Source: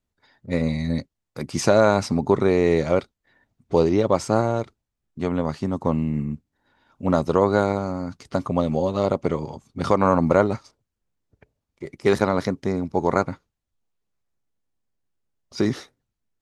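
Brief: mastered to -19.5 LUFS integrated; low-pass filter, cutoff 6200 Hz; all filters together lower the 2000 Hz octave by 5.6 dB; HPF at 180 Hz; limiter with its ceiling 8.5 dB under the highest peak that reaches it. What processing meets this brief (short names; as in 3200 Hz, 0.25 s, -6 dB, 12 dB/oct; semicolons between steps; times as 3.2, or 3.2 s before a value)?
HPF 180 Hz; LPF 6200 Hz; bell 2000 Hz -8.5 dB; gain +7 dB; limiter -5.5 dBFS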